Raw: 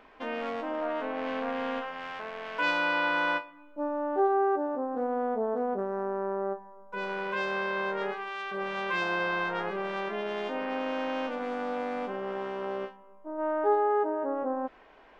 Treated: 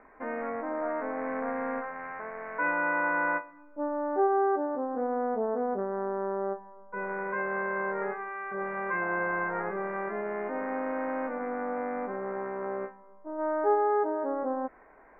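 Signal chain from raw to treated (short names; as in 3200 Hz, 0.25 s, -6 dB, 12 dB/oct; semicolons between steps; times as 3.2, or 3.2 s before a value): steep low-pass 2200 Hz 72 dB/oct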